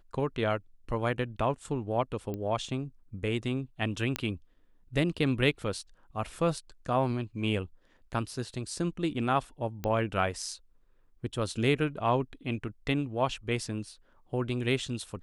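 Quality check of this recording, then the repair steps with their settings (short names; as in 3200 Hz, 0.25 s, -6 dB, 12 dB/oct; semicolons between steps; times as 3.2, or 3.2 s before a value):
2.34 pop -24 dBFS
4.16 pop -13 dBFS
9.84 pop -19 dBFS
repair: de-click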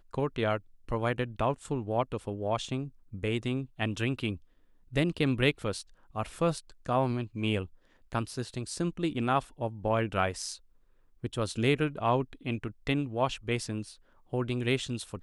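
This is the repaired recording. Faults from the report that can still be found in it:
9.84 pop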